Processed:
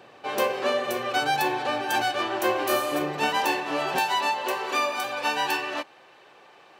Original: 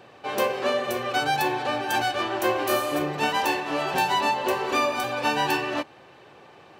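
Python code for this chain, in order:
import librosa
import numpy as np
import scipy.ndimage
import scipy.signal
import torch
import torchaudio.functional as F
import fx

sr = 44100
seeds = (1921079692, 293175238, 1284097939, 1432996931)

y = fx.highpass(x, sr, hz=fx.steps((0.0, 180.0), (3.99, 660.0)), slope=6)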